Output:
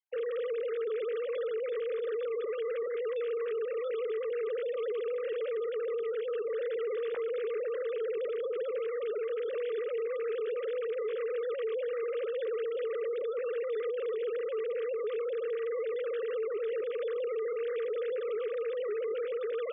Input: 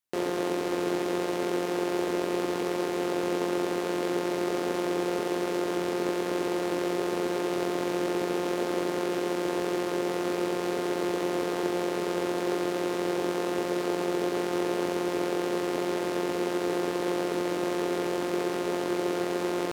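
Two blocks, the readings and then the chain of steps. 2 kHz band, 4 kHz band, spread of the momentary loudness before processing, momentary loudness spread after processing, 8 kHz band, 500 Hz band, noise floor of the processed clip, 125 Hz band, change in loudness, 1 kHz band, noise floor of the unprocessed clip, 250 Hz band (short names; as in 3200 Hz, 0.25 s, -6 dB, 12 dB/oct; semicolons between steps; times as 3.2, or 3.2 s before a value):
-9.5 dB, -14.5 dB, 1 LU, 1 LU, under -40 dB, -1.5 dB, -36 dBFS, under -35 dB, -4.5 dB, -15.0 dB, -31 dBFS, under -25 dB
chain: sine-wave speech; bell 900 Hz -7 dB 1.1 oct; limiter -28 dBFS, peak gain reduction 8 dB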